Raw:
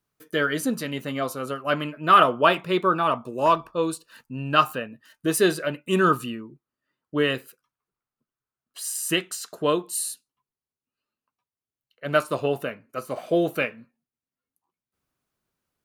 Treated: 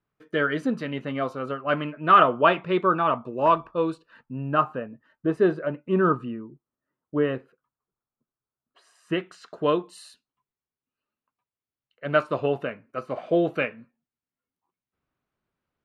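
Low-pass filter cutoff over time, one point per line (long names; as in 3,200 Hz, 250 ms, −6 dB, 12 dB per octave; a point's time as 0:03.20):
0:03.91 2,500 Hz
0:04.49 1,200 Hz
0:08.96 1,200 Hz
0:09.55 2,800 Hz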